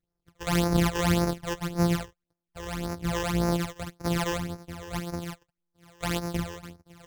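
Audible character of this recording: a buzz of ramps at a fixed pitch in blocks of 256 samples; phasing stages 12, 1.8 Hz, lowest notch 220–3200 Hz; MP3

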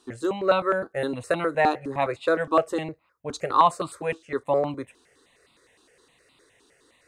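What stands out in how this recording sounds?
notches that jump at a steady rate 9.7 Hz 550–1700 Hz

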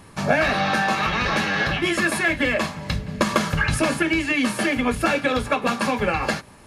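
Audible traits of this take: noise floor -46 dBFS; spectral tilt -4.5 dB/octave

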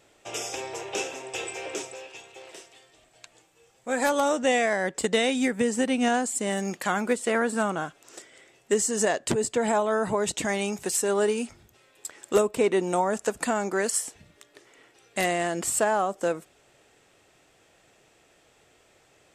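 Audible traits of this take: noise floor -62 dBFS; spectral tilt -3.0 dB/octave

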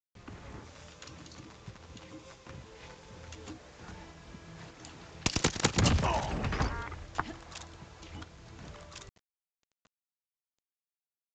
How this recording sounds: tremolo saw up 1.7 Hz, depth 35%; a quantiser's noise floor 10-bit, dither none; µ-law

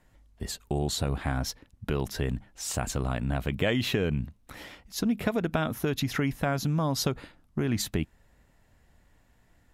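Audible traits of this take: noise floor -64 dBFS; spectral tilt -5.0 dB/octave

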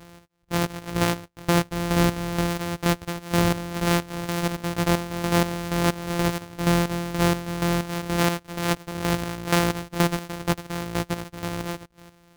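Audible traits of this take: a buzz of ramps at a fixed pitch in blocks of 256 samples; chopped level 2.1 Hz, depth 65%, duty 40%

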